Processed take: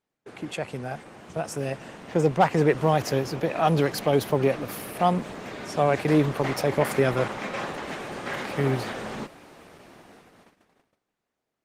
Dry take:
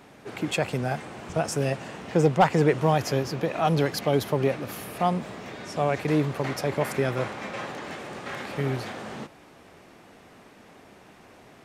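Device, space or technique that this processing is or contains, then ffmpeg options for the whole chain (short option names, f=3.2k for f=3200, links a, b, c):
video call: -af "highpass=f=110:p=1,dynaudnorm=f=400:g=11:m=12.5dB,agate=range=-28dB:threshold=-44dB:ratio=16:detection=peak,volume=-4.5dB" -ar 48000 -c:a libopus -b:a 20k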